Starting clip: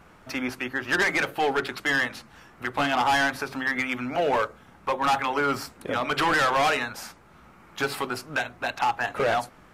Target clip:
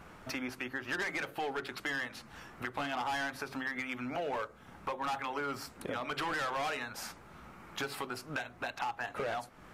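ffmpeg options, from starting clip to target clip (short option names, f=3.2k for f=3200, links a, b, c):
-af "acompressor=threshold=-38dB:ratio=3"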